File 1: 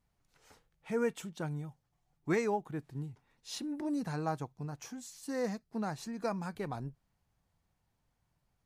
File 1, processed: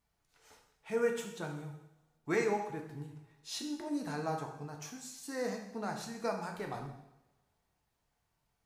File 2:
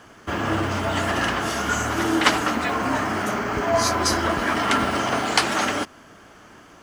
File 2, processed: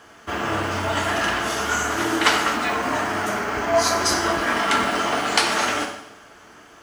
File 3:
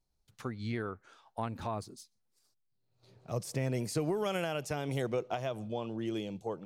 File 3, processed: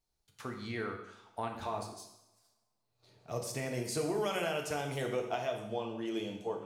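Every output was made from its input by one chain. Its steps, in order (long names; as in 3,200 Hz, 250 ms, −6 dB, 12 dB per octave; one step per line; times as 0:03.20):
low-shelf EQ 370 Hz −7 dB
coupled-rooms reverb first 0.82 s, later 2.4 s, from −28 dB, DRR 2 dB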